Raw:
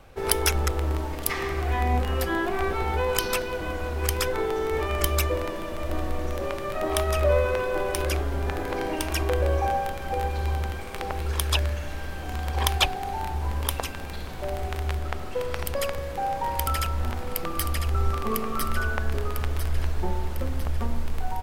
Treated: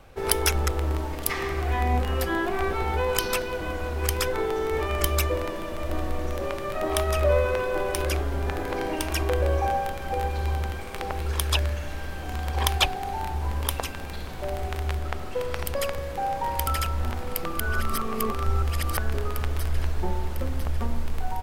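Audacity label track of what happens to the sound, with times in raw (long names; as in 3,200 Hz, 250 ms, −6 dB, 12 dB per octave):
17.600000	18.970000	reverse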